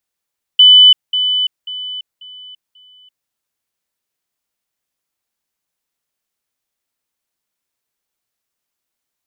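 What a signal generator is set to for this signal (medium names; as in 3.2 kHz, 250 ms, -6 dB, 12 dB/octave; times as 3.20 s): level ladder 3 kHz -2.5 dBFS, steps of -10 dB, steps 5, 0.34 s 0.20 s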